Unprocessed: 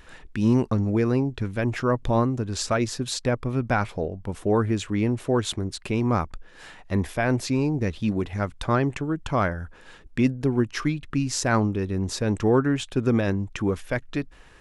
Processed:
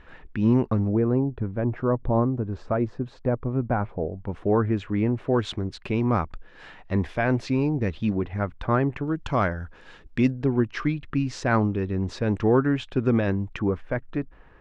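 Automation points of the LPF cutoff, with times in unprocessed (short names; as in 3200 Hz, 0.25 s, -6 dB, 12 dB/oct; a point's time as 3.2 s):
2400 Hz
from 0.88 s 1000 Hz
from 4.19 s 2100 Hz
from 5.34 s 3400 Hz
from 8.15 s 2100 Hz
from 9.08 s 5200 Hz
from 10.39 s 3100 Hz
from 13.59 s 1600 Hz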